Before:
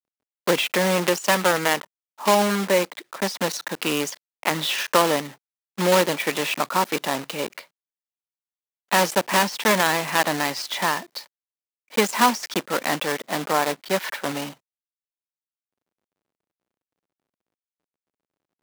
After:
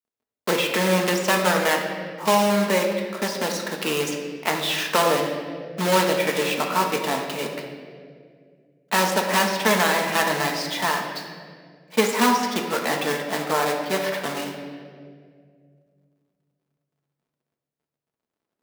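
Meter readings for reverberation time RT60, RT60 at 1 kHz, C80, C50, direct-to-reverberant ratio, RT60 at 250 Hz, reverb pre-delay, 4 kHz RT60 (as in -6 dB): 2.1 s, 1.7 s, 6.0 dB, 4.5 dB, 0.5 dB, 2.7 s, 5 ms, 1.4 s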